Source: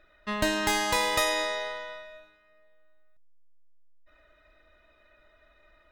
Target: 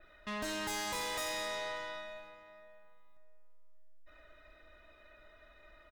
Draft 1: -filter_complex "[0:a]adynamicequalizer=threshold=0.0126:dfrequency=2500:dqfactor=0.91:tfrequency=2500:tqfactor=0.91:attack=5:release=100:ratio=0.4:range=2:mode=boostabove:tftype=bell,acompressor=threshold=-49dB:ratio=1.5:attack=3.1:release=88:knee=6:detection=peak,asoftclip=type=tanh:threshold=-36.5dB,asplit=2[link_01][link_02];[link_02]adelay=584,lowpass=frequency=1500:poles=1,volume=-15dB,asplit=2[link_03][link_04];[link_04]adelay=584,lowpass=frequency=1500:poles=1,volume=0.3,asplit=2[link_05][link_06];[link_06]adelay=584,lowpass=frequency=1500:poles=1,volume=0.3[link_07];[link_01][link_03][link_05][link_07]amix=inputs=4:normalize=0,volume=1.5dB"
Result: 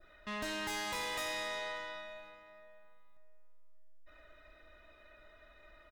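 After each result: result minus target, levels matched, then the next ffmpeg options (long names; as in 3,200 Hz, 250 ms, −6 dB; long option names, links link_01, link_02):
downward compressor: peak gain reduction +3 dB; 8,000 Hz band −3.0 dB
-filter_complex "[0:a]adynamicequalizer=threshold=0.0126:dfrequency=2500:dqfactor=0.91:tfrequency=2500:tqfactor=0.91:attack=5:release=100:ratio=0.4:range=2:mode=boostabove:tftype=bell,acompressor=threshold=-41dB:ratio=1.5:attack=3.1:release=88:knee=6:detection=peak,asoftclip=type=tanh:threshold=-36.5dB,asplit=2[link_01][link_02];[link_02]adelay=584,lowpass=frequency=1500:poles=1,volume=-15dB,asplit=2[link_03][link_04];[link_04]adelay=584,lowpass=frequency=1500:poles=1,volume=0.3,asplit=2[link_05][link_06];[link_06]adelay=584,lowpass=frequency=1500:poles=1,volume=0.3[link_07];[link_01][link_03][link_05][link_07]amix=inputs=4:normalize=0,volume=1.5dB"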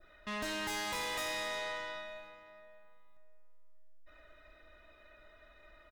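8,000 Hz band −2.5 dB
-filter_complex "[0:a]adynamicequalizer=threshold=0.0126:dfrequency=7100:dqfactor=0.91:tfrequency=7100:tqfactor=0.91:attack=5:release=100:ratio=0.4:range=2:mode=boostabove:tftype=bell,acompressor=threshold=-41dB:ratio=1.5:attack=3.1:release=88:knee=6:detection=peak,asoftclip=type=tanh:threshold=-36.5dB,asplit=2[link_01][link_02];[link_02]adelay=584,lowpass=frequency=1500:poles=1,volume=-15dB,asplit=2[link_03][link_04];[link_04]adelay=584,lowpass=frequency=1500:poles=1,volume=0.3,asplit=2[link_05][link_06];[link_06]adelay=584,lowpass=frequency=1500:poles=1,volume=0.3[link_07];[link_01][link_03][link_05][link_07]amix=inputs=4:normalize=0,volume=1.5dB"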